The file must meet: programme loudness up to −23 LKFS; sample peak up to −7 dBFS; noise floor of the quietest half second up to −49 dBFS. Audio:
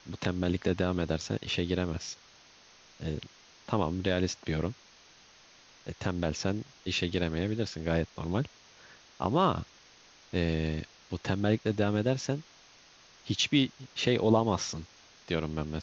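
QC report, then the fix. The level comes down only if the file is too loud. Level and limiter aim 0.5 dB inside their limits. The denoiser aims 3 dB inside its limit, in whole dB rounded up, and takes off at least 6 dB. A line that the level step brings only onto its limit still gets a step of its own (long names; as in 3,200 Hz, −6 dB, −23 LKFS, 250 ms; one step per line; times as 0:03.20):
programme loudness −31.0 LKFS: in spec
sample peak −11.0 dBFS: in spec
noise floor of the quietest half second −58 dBFS: in spec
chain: no processing needed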